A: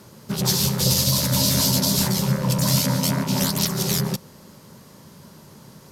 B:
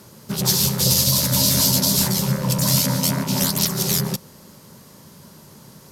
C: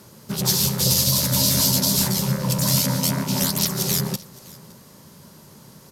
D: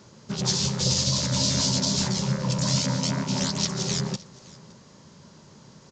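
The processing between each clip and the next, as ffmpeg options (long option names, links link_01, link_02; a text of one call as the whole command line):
ffmpeg -i in.wav -af "highshelf=frequency=6000:gain=5.5" out.wav
ffmpeg -i in.wav -af "aecho=1:1:565:0.075,volume=-1.5dB" out.wav
ffmpeg -i in.wav -af "aresample=16000,aresample=44100,volume=-3dB" out.wav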